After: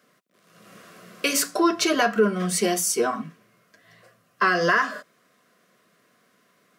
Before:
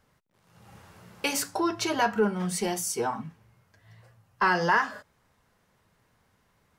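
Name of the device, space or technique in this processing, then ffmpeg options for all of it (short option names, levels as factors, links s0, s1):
PA system with an anti-feedback notch: -af "highpass=f=190:w=0.5412,highpass=f=190:w=1.3066,asuperstop=centerf=870:order=12:qfactor=4,alimiter=limit=0.15:level=0:latency=1:release=163,volume=2.24"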